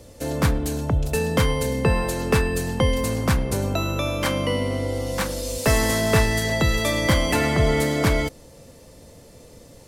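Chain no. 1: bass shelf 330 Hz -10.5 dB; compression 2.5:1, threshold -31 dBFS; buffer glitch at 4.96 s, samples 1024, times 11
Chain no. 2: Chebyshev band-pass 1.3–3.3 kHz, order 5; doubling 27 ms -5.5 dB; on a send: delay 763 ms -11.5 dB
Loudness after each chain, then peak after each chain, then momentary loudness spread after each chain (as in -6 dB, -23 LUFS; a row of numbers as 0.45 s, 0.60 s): -31.5 LUFS, -29.5 LUFS; -13.5 dBFS, -14.5 dBFS; 20 LU, 15 LU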